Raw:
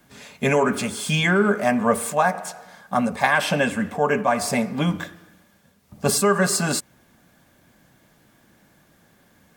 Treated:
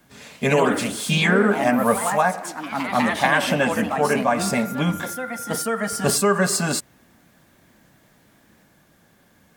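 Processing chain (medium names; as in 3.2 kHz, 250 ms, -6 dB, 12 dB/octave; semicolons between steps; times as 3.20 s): ever faster or slower copies 116 ms, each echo +2 st, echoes 3, each echo -6 dB; 4.39–6.14 s: whistle 1.4 kHz -34 dBFS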